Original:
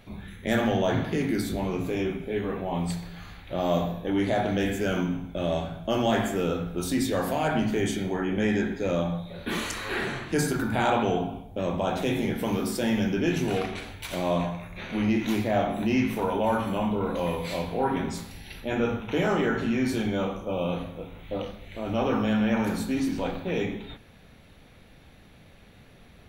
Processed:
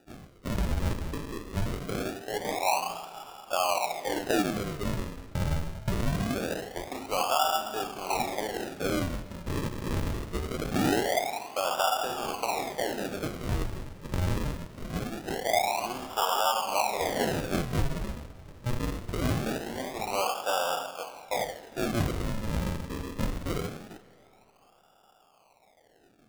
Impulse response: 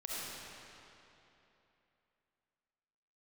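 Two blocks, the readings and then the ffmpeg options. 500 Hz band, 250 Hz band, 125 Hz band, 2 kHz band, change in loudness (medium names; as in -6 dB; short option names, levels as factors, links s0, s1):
-4.5 dB, -8.0 dB, -2.0 dB, -3.0 dB, -3.0 dB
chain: -filter_complex "[0:a]alimiter=limit=0.112:level=0:latency=1:release=286,lowpass=f=2100:p=1,adynamicsmooth=sensitivity=3.5:basefreq=1100,agate=range=0.447:threshold=0.00447:ratio=16:detection=peak,highpass=f=770:t=q:w=4.4,acrusher=samples=41:mix=1:aa=0.000001:lfo=1:lforange=41:lforate=0.23,acompressor=threshold=0.0398:ratio=2.5,asplit=2[s0][s1];[1:a]atrim=start_sample=2205,lowshelf=f=140:g=-10.5[s2];[s1][s2]afir=irnorm=-1:irlink=0,volume=0.126[s3];[s0][s3]amix=inputs=2:normalize=0,volume=1.33"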